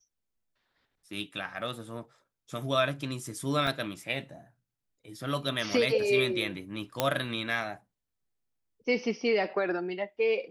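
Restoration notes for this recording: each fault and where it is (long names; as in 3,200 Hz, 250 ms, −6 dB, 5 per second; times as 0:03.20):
0:03.67: drop-out 2.4 ms
0:07.00: click −9 dBFS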